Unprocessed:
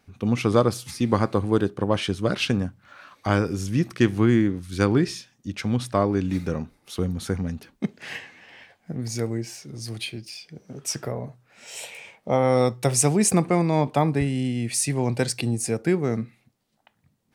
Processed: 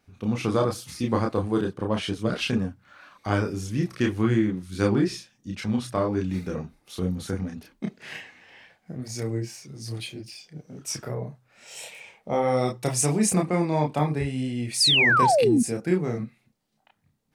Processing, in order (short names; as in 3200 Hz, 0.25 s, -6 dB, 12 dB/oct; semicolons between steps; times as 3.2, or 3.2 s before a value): chorus voices 6, 0.81 Hz, delay 30 ms, depth 3.4 ms; painted sound fall, 14.8–15.63, 220–5300 Hz -19 dBFS